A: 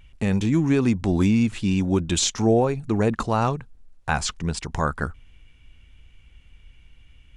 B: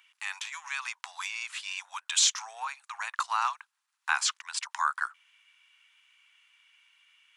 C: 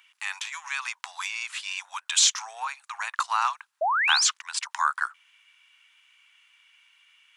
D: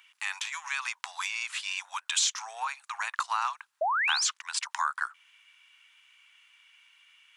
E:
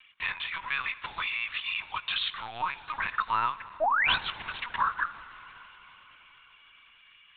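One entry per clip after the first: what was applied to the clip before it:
Butterworth high-pass 950 Hz 48 dB per octave
sound drawn into the spectrogram rise, 0:03.81–0:04.28, 590–7,700 Hz −27 dBFS; level +3.5 dB
downward compressor 2 to 1, threshold −28 dBFS, peak gain reduction 7 dB
dense smooth reverb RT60 4.6 s, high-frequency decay 0.8×, DRR 14.5 dB; linear-prediction vocoder at 8 kHz pitch kept; level +2 dB

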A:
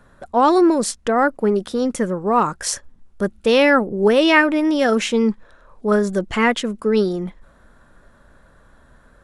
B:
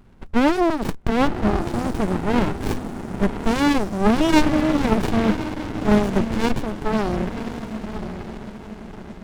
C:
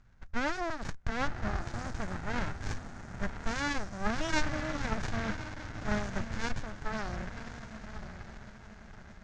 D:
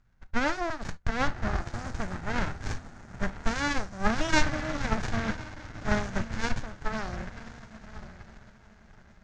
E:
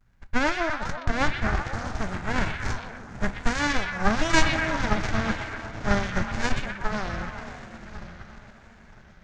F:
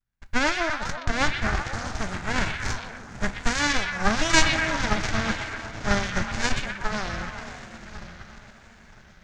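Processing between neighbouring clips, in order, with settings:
feedback delay with all-pass diffusion 1,017 ms, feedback 41%, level −10.5 dB; windowed peak hold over 65 samples; level +3 dB
drawn EQ curve 120 Hz 0 dB, 180 Hz −8 dB, 390 Hz −13 dB, 600 Hz −5 dB, 1,000 Hz −5 dB, 1,600 Hz +4 dB, 2,900 Hz −4 dB, 6,600 Hz +4 dB, 13,000 Hz −27 dB; level −9 dB
convolution reverb, pre-delay 17 ms, DRR 13 dB; expander for the loud parts 1.5 to 1, over −49 dBFS; level +7.5 dB
pitch vibrato 0.95 Hz 81 cents; on a send: echo through a band-pass that steps 123 ms, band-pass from 2,800 Hz, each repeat −0.7 octaves, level −2 dB; on the sum: level +3.5 dB
high-shelf EQ 2,400 Hz +8.5 dB; noise gate with hold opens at −46 dBFS; level −1 dB

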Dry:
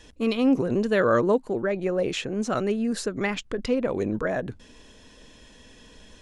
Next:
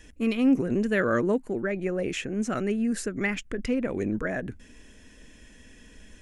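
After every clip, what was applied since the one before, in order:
graphic EQ with 10 bands 125 Hz −5 dB, 500 Hz −6 dB, 1,000 Hz −10 dB, 2,000 Hz +4 dB, 4,000 Hz −12 dB
level +2.5 dB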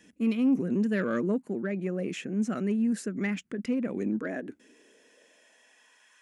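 soft clipping −15 dBFS, distortion −21 dB
high-pass filter sweep 190 Hz → 1,100 Hz, 0:03.90–0:06.18
level −6 dB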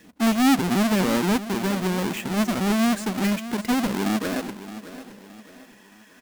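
each half-wave held at its own peak
repeating echo 619 ms, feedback 40%, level −14 dB
level +2.5 dB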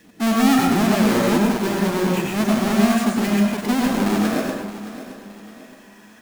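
dense smooth reverb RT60 0.77 s, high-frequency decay 0.55×, pre-delay 85 ms, DRR −1.5 dB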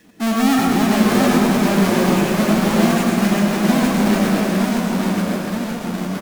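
delay with pitch and tempo change per echo 690 ms, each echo −1 semitone, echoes 2
single-tap delay 296 ms −7 dB

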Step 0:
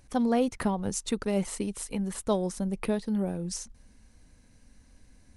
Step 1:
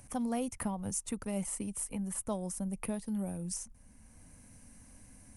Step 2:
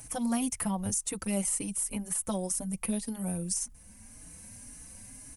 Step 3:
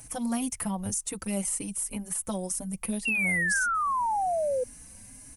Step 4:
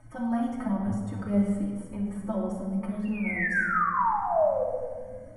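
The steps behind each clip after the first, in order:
graphic EQ with 15 bands 100 Hz +4 dB, 400 Hz −8 dB, 1,600 Hz −4 dB, 4,000 Hz −10 dB, 10,000 Hz +11 dB; multiband upward and downward compressor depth 40%; level −6 dB
high-shelf EQ 2,400 Hz +9 dB; brickwall limiter −24 dBFS, peak gain reduction 9 dB; barber-pole flanger 4.3 ms +1.9 Hz; level +6.5 dB
sound drawn into the spectrogram fall, 0:03.05–0:04.64, 490–2,800 Hz −27 dBFS
Savitzky-Golay smoothing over 41 samples; flanger 1.2 Hz, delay 8.3 ms, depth 2 ms, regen +37%; rectangular room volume 2,100 cubic metres, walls mixed, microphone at 2.7 metres; level +1.5 dB

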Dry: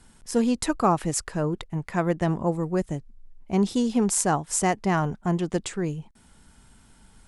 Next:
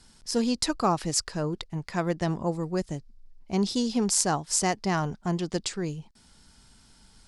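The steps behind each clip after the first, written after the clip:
parametric band 4,800 Hz +12.5 dB 0.85 octaves
level −3.5 dB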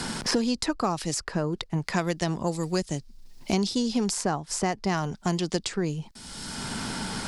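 multiband upward and downward compressor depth 100%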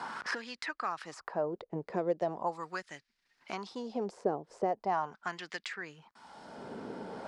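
LFO wah 0.4 Hz 450–1,900 Hz, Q 2.7
level +2.5 dB

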